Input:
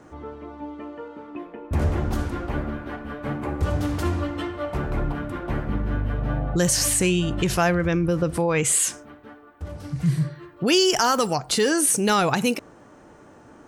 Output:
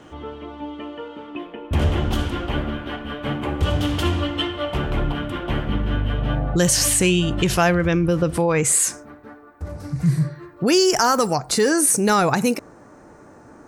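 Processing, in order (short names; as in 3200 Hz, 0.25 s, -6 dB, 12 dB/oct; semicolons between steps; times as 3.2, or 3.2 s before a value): bell 3100 Hz +14.5 dB 0.48 oct, from 6.35 s +3 dB, from 8.52 s -10.5 dB; gain +3 dB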